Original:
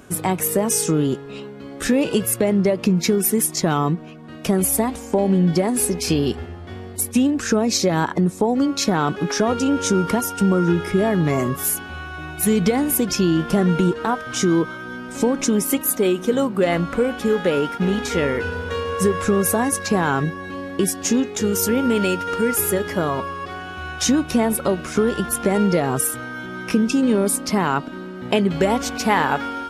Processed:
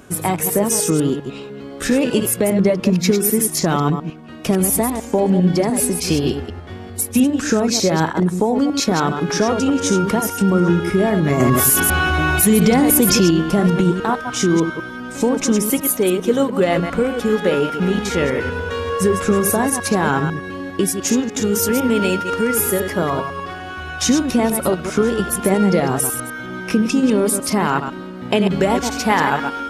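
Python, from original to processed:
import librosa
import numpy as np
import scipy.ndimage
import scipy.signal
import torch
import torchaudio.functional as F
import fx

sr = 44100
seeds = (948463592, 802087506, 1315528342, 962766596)

y = fx.reverse_delay(x, sr, ms=100, wet_db=-7)
y = fx.env_flatten(y, sr, amount_pct=70, at=(11.4, 13.31))
y = y * librosa.db_to_amplitude(1.5)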